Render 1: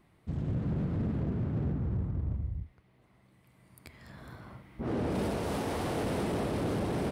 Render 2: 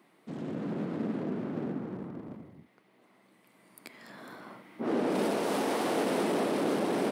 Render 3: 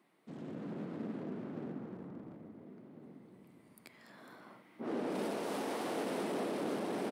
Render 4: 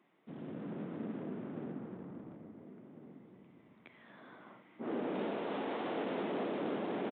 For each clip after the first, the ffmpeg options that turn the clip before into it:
ffmpeg -i in.wav -af "highpass=frequency=220:width=0.5412,highpass=frequency=220:width=1.3066,volume=4.5dB" out.wav
ffmpeg -i in.wav -filter_complex "[0:a]asplit=2[link_01][link_02];[link_02]adelay=1399,volume=-11dB,highshelf=frequency=4000:gain=-31.5[link_03];[link_01][link_03]amix=inputs=2:normalize=0,volume=-8dB" out.wav
ffmpeg -i in.wav -af "aresample=8000,aresample=44100" out.wav

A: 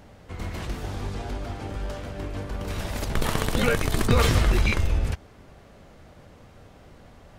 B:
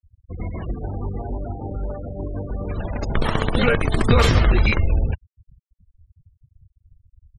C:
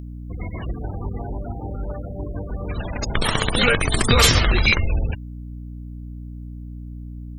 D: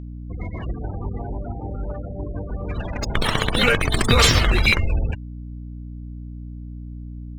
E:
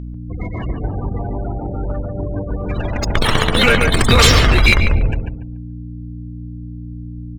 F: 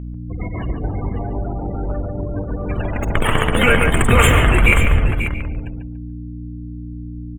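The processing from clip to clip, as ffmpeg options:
ffmpeg -i in.wav -af "afftfilt=real='re*gte(hypot(re,im),0.0316)':imag='im*gte(hypot(re,im),0.0316)':win_size=1024:overlap=0.75,volume=4.5dB" out.wav
ffmpeg -i in.wav -af "aeval=exprs='val(0)+0.0316*(sin(2*PI*60*n/s)+sin(2*PI*2*60*n/s)/2+sin(2*PI*3*60*n/s)/3+sin(2*PI*4*60*n/s)/4+sin(2*PI*5*60*n/s)/5)':channel_layout=same,crystalizer=i=6.5:c=0,volume=-2.5dB" out.wav
ffmpeg -i in.wav -af "adynamicsmooth=sensitivity=5:basefreq=3900" out.wav
ffmpeg -i in.wav -filter_complex "[0:a]asplit=2[link_01][link_02];[link_02]adelay=143,lowpass=frequency=1700:poles=1,volume=-5dB,asplit=2[link_03][link_04];[link_04]adelay=143,lowpass=frequency=1700:poles=1,volume=0.28,asplit=2[link_05][link_06];[link_06]adelay=143,lowpass=frequency=1700:poles=1,volume=0.28,asplit=2[link_07][link_08];[link_08]adelay=143,lowpass=frequency=1700:poles=1,volume=0.28[link_09];[link_03][link_05][link_07][link_09]amix=inputs=4:normalize=0[link_10];[link_01][link_10]amix=inputs=2:normalize=0,asoftclip=type=tanh:threshold=-6.5dB,volume=5.5dB" out.wav
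ffmpeg -i in.wav -filter_complex "[0:a]asuperstop=centerf=4800:order=8:qfactor=1.1,asplit=2[link_01][link_02];[link_02]aecho=0:1:50|537:0.112|0.299[link_03];[link_01][link_03]amix=inputs=2:normalize=0,volume=-1dB" out.wav

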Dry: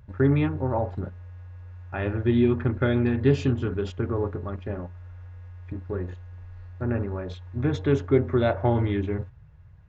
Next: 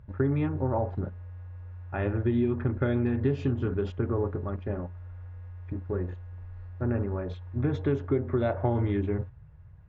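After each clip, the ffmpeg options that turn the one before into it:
ffmpeg -i in.wav -af "lowpass=frequency=1700:poles=1,acompressor=threshold=-22dB:ratio=6" out.wav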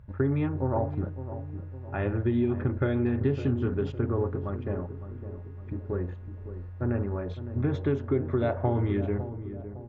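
ffmpeg -i in.wav -filter_complex "[0:a]asplit=2[link_01][link_02];[link_02]adelay=558,lowpass=frequency=840:poles=1,volume=-11dB,asplit=2[link_03][link_04];[link_04]adelay=558,lowpass=frequency=840:poles=1,volume=0.53,asplit=2[link_05][link_06];[link_06]adelay=558,lowpass=frequency=840:poles=1,volume=0.53,asplit=2[link_07][link_08];[link_08]adelay=558,lowpass=frequency=840:poles=1,volume=0.53,asplit=2[link_09][link_10];[link_10]adelay=558,lowpass=frequency=840:poles=1,volume=0.53,asplit=2[link_11][link_12];[link_12]adelay=558,lowpass=frequency=840:poles=1,volume=0.53[link_13];[link_01][link_03][link_05][link_07][link_09][link_11][link_13]amix=inputs=7:normalize=0" out.wav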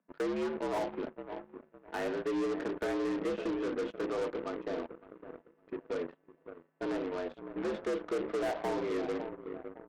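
ffmpeg -i in.wav -af "highpass=frequency=190:width_type=q:width=0.5412,highpass=frequency=190:width_type=q:width=1.307,lowpass=frequency=3400:width_type=q:width=0.5176,lowpass=frequency=3400:width_type=q:width=0.7071,lowpass=frequency=3400:width_type=q:width=1.932,afreqshift=67,asoftclip=type=tanh:threshold=-28.5dB,aeval=exprs='0.0376*(cos(1*acos(clip(val(0)/0.0376,-1,1)))-cos(1*PI/2))+0.00106*(cos(3*acos(clip(val(0)/0.0376,-1,1)))-cos(3*PI/2))+0.00422*(cos(7*acos(clip(val(0)/0.0376,-1,1)))-cos(7*PI/2))':channel_layout=same" out.wav

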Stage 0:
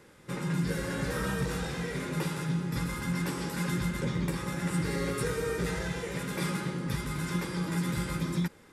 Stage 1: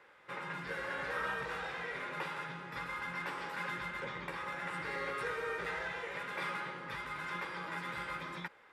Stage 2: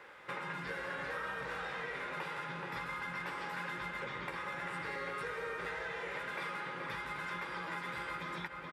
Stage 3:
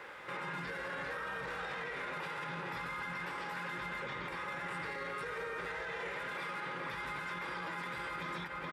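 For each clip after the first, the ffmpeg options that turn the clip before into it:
ffmpeg -i in.wav -filter_complex "[0:a]acrossover=split=570 3200:gain=0.0794 1 0.0891[link_01][link_02][link_03];[link_01][link_02][link_03]amix=inputs=3:normalize=0,volume=1dB" out.wav
ffmpeg -i in.wav -filter_complex "[0:a]asplit=2[link_01][link_02];[link_02]adelay=425.7,volume=-8dB,highshelf=frequency=4000:gain=-9.58[link_03];[link_01][link_03]amix=inputs=2:normalize=0,acompressor=threshold=-46dB:ratio=4,volume=7dB" out.wav
ffmpeg -i in.wav -af "alimiter=level_in=14dB:limit=-24dB:level=0:latency=1:release=28,volume=-14dB,volume=5.5dB" out.wav

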